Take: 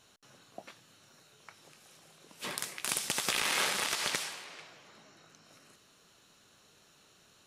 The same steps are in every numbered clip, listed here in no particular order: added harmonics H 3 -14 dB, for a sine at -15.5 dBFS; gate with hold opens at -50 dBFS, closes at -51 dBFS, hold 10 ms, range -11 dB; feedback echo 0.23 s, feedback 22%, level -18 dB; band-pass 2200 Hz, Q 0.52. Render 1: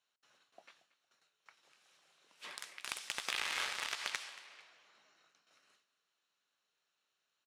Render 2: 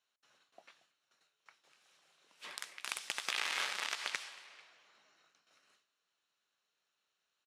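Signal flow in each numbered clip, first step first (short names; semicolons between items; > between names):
gate with hold > band-pass > added harmonics > feedback echo; feedback echo > gate with hold > added harmonics > band-pass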